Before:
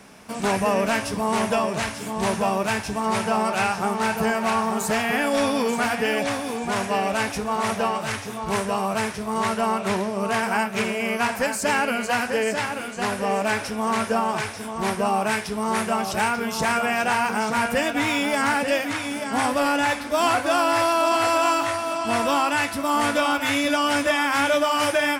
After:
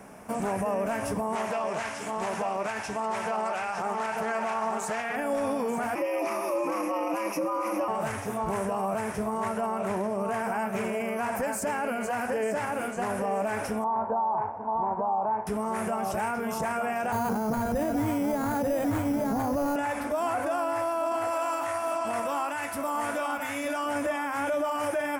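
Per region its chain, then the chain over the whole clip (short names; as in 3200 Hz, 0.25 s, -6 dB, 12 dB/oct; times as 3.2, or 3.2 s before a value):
1.35–5.16 LPF 4900 Hz + tilt +3.5 dB/oct + Doppler distortion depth 0.2 ms
5.95–7.88 ripple EQ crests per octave 0.84, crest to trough 12 dB + frequency shift +110 Hz
13.84–15.47 synth low-pass 910 Hz, resonance Q 6.6 + upward expander, over -27 dBFS
17.12–19.76 tilt -4 dB/oct + careless resampling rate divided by 8×, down none, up hold
21.31–23.86 tilt shelf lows -4 dB, about 730 Hz + flange 1.5 Hz, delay 2.7 ms, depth 9 ms, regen +84%
whole clip: bell 670 Hz +4.5 dB 0.95 oct; limiter -20 dBFS; bell 4000 Hz -14.5 dB 1.2 oct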